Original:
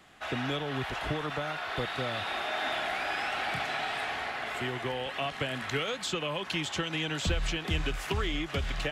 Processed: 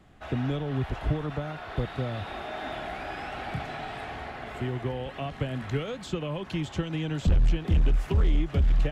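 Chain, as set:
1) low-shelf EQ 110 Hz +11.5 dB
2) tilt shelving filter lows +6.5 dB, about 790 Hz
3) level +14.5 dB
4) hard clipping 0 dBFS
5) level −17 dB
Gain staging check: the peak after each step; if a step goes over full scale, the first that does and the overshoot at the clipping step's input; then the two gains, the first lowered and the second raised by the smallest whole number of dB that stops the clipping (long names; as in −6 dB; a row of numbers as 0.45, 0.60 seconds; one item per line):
−12.0, −6.5, +8.0, 0.0, −17.0 dBFS
step 3, 8.0 dB
step 3 +6.5 dB, step 5 −9 dB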